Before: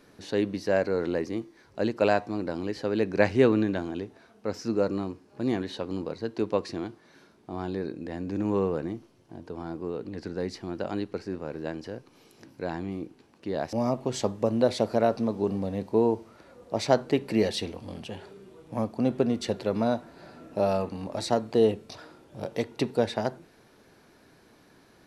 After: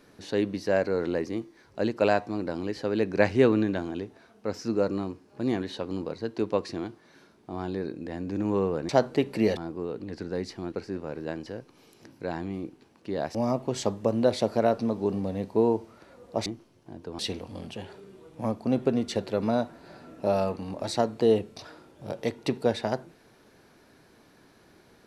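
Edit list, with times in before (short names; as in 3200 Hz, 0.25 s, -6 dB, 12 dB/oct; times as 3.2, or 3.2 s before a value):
8.89–9.62 swap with 16.84–17.52
10.77–11.1 cut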